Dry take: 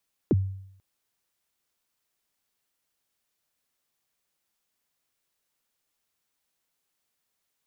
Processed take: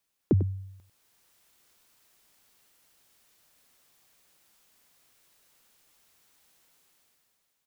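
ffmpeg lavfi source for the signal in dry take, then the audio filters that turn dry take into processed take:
-f lavfi -i "aevalsrc='0.168*pow(10,-3*t/0.71)*sin(2*PI*(450*0.032/log(96/450)*(exp(log(96/450)*min(t,0.032)/0.032)-1)+96*max(t-0.032,0)))':duration=0.49:sample_rate=44100"
-filter_complex "[0:a]dynaudnorm=framelen=190:gausssize=9:maxgain=14dB,asplit=2[link_01][link_02];[link_02]aecho=0:1:97:0.251[link_03];[link_01][link_03]amix=inputs=2:normalize=0"

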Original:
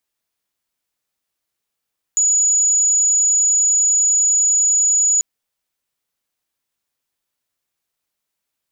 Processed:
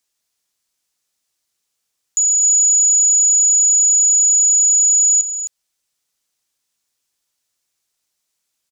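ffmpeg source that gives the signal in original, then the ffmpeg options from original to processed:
-f lavfi -i "aevalsrc='0.251*sin(2*PI*6890*t)':duration=3.04:sample_rate=44100"
-af "equalizer=frequency=6500:width=0.67:gain=9.5,alimiter=limit=-11.5dB:level=0:latency=1:release=399,aecho=1:1:262:0.355"

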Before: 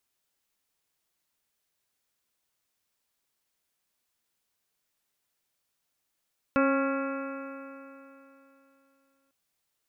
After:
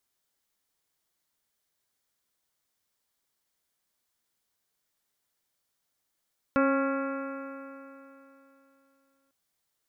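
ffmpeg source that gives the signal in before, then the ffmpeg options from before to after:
-f lavfi -i "aevalsrc='0.0708*pow(10,-3*t/3.12)*sin(2*PI*271.2*t)+0.0596*pow(10,-3*t/3.12)*sin(2*PI*543.62*t)+0.0126*pow(10,-3*t/3.12)*sin(2*PI*818.47*t)+0.0282*pow(10,-3*t/3.12)*sin(2*PI*1096.93*t)+0.0447*pow(10,-3*t/3.12)*sin(2*PI*1380.17*t)+0.0126*pow(10,-3*t/3.12)*sin(2*PI*1669.32*t)+0.00794*pow(10,-3*t/3.12)*sin(2*PI*1965.48*t)+0.00794*pow(10,-3*t/3.12)*sin(2*PI*2269.68*t)+0.0141*pow(10,-3*t/3.12)*sin(2*PI*2582.92*t)':duration=2.75:sample_rate=44100"
-af "equalizer=frequency=2600:width=6.6:gain=-6"

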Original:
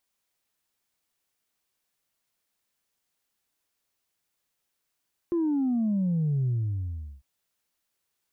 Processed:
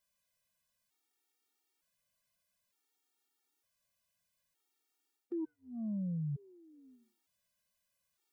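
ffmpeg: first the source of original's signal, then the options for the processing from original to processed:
-f lavfi -i "aevalsrc='0.0708*clip((1.9-t)/0.75,0,1)*tanh(1*sin(2*PI*350*1.9/log(65/350)*(exp(log(65/350)*t/1.9)-1)))/tanh(1)':duration=1.9:sample_rate=44100"
-af "areverse,acompressor=threshold=-36dB:ratio=6,areverse,afftfilt=real='re*gt(sin(2*PI*0.55*pts/sr)*(1-2*mod(floor(b*sr/1024/240),2)),0)':imag='im*gt(sin(2*PI*0.55*pts/sr)*(1-2*mod(floor(b*sr/1024/240),2)),0)':win_size=1024:overlap=0.75"

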